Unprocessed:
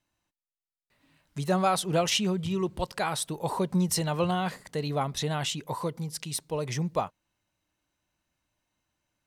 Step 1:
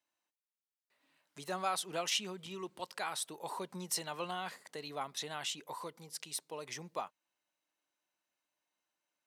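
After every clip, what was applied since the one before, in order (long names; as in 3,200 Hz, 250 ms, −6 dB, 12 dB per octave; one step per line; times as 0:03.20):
high-pass filter 390 Hz 12 dB per octave
dynamic equaliser 530 Hz, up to −6 dB, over −42 dBFS, Q 1.1
level −6.5 dB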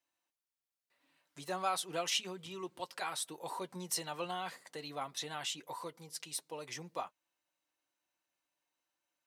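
notch comb filter 210 Hz
level +1 dB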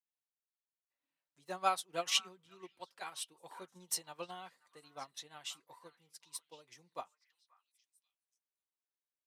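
echo through a band-pass that steps 535 ms, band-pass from 1,500 Hz, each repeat 1.4 octaves, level −7 dB
expander for the loud parts 2.5 to 1, over −46 dBFS
level +4.5 dB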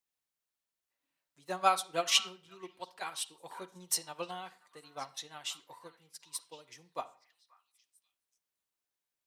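convolution reverb RT60 0.45 s, pre-delay 41 ms, DRR 16.5 dB
level +5 dB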